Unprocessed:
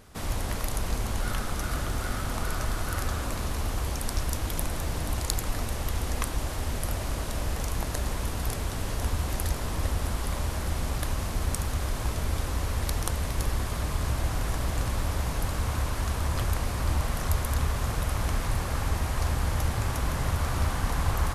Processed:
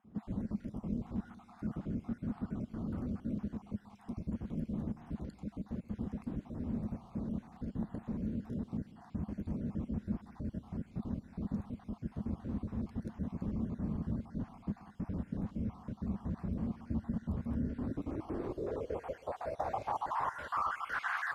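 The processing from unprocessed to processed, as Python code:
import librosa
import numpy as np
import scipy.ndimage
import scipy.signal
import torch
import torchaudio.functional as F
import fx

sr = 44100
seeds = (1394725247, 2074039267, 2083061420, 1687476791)

y = fx.spec_dropout(x, sr, seeds[0], share_pct=44)
y = fx.filter_sweep_bandpass(y, sr, from_hz=210.0, to_hz=1700.0, start_s=17.45, end_s=21.23, q=4.6)
y = fx.echo_heads(y, sr, ms=64, heads='second and third', feedback_pct=45, wet_db=-20.0)
y = y * 10.0 ** (9.0 / 20.0)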